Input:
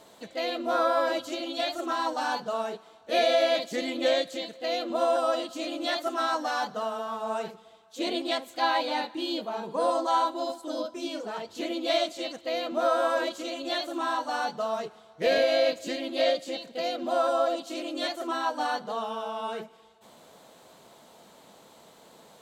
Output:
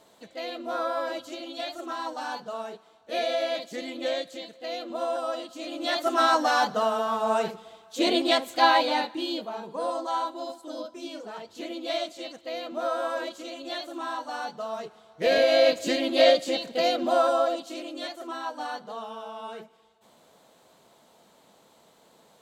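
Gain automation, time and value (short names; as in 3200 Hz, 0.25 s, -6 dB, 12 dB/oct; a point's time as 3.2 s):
5.57 s -4.5 dB
6.19 s +6.5 dB
8.64 s +6.5 dB
9.76 s -4 dB
14.66 s -4 dB
15.89 s +6.5 dB
16.88 s +6.5 dB
18.08 s -5 dB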